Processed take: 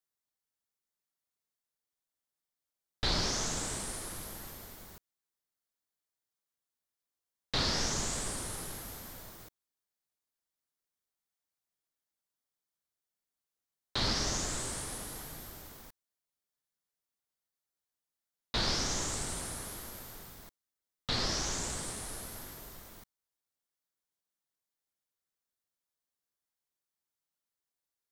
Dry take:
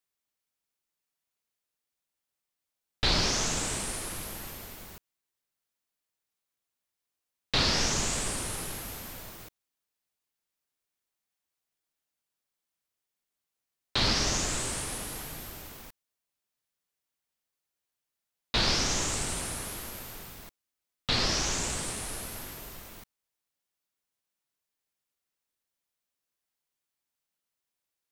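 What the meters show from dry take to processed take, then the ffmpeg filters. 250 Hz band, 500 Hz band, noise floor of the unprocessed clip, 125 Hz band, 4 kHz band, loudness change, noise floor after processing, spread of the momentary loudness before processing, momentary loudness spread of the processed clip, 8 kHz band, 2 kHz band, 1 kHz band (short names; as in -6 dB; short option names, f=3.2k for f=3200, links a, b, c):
-4.5 dB, -4.5 dB, under -85 dBFS, -4.5 dB, -5.5 dB, -5.0 dB, under -85 dBFS, 19 LU, 18 LU, -4.5 dB, -6.5 dB, -4.5 dB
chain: -af "equalizer=f=2.6k:t=o:w=0.49:g=-6,volume=-4.5dB"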